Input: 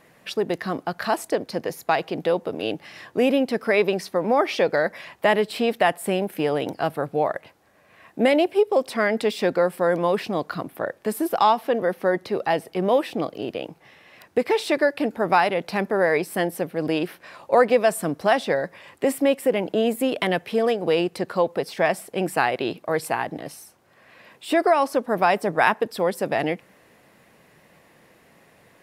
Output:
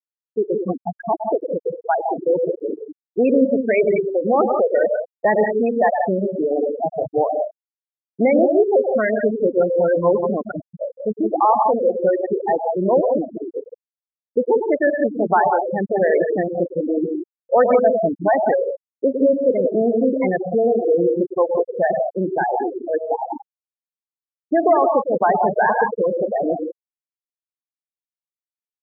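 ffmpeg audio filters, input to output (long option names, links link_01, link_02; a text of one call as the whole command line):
ffmpeg -i in.wav -af "aecho=1:1:42|106|114|162|185:0.224|0.422|0.178|0.422|0.473,asoftclip=type=tanh:threshold=-9.5dB,afftfilt=real='re*gte(hypot(re,im),0.282)':imag='im*gte(hypot(re,im),0.282)':win_size=1024:overlap=0.75,volume=4dB" out.wav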